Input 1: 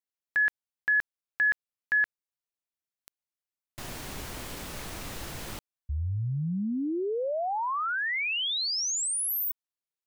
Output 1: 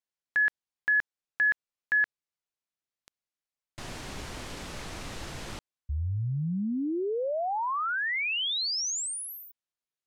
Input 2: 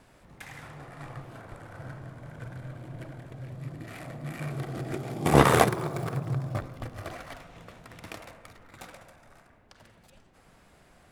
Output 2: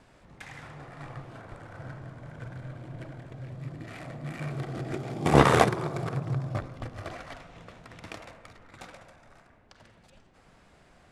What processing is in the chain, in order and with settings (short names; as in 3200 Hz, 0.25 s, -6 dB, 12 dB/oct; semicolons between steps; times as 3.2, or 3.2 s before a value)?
LPF 7700 Hz 12 dB/oct